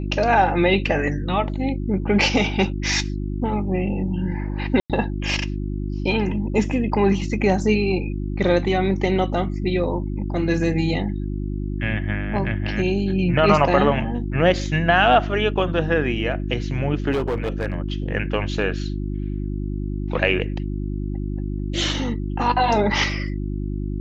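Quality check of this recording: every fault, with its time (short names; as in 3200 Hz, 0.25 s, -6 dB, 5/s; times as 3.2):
hum 50 Hz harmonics 7 -26 dBFS
4.8–4.9 gap 97 ms
17.11–17.74 clipped -18.5 dBFS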